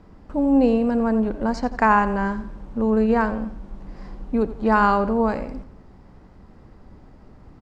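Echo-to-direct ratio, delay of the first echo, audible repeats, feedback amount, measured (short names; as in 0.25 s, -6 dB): -13.5 dB, 87 ms, 3, 41%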